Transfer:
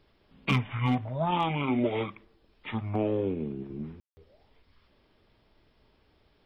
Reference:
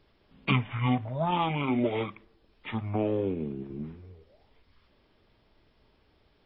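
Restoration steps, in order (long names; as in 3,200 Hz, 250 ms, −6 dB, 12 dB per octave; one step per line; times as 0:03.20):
clipped peaks rebuilt −17 dBFS
ambience match 0:04.00–0:04.17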